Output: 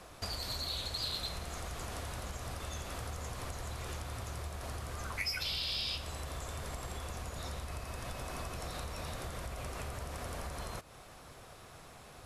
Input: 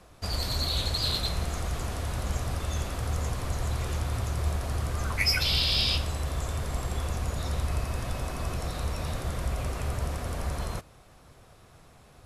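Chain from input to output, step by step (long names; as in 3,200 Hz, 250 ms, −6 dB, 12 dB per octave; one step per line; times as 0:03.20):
downward compressor, threshold −38 dBFS, peak gain reduction 16.5 dB
low-shelf EQ 310 Hz −7 dB
level +4.5 dB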